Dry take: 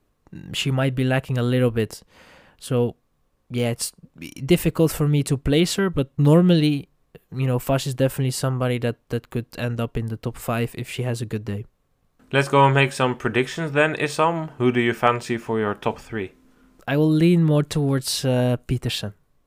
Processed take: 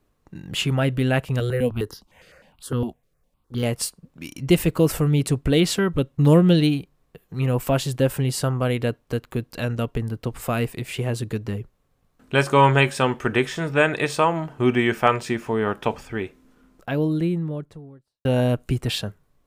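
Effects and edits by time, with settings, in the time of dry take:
1.40–3.63 s: stepped phaser 9.8 Hz 250–2400 Hz
16.23–18.25 s: studio fade out

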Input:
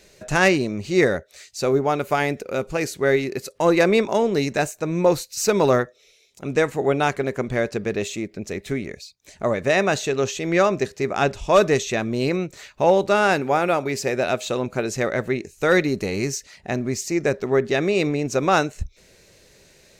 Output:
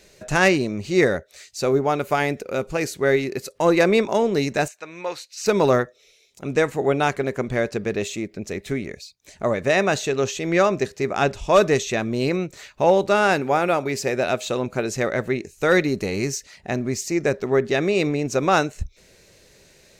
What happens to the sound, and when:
4.68–5.46 s: band-pass filter 2.4 kHz, Q 0.85

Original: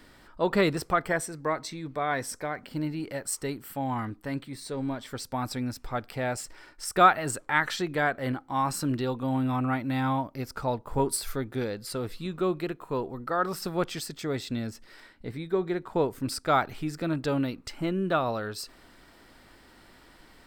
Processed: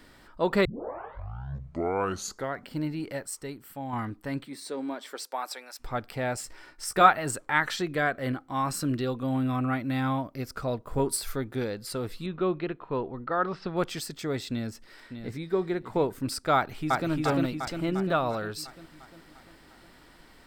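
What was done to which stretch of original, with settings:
0.65 s: tape start 2.01 s
3.25–3.93 s: gain -5.5 dB
4.45–5.79 s: high-pass 170 Hz -> 650 Hz 24 dB/octave
6.42–7.10 s: doubling 15 ms -8 dB
7.83–11.04 s: band-stop 880 Hz, Q 5.1
12.26–13.77 s: low-pass 3.8 kHz 24 dB/octave
14.49–15.52 s: echo throw 600 ms, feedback 15%, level -9 dB
16.55–17.10 s: echo throw 350 ms, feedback 60%, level -1 dB

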